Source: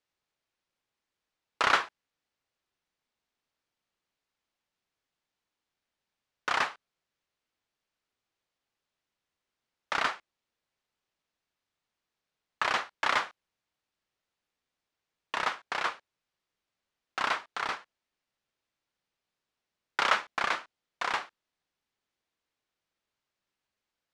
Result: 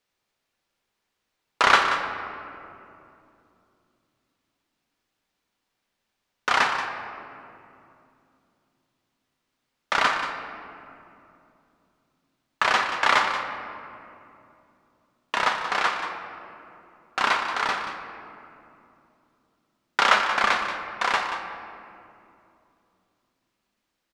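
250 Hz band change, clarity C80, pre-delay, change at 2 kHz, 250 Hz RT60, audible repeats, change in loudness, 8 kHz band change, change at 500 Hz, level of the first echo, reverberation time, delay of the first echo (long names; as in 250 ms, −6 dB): +9.0 dB, 5.5 dB, 4 ms, +8.0 dB, 4.1 s, 1, +7.0 dB, +7.5 dB, +8.0 dB, −10.5 dB, 2.8 s, 181 ms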